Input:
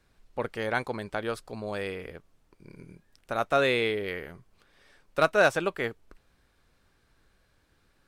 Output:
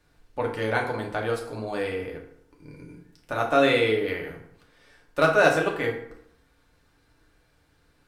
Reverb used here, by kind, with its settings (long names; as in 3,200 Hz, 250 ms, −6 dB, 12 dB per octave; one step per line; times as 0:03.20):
feedback delay network reverb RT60 0.71 s, low-frequency decay 1×, high-frequency decay 0.65×, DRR −1 dB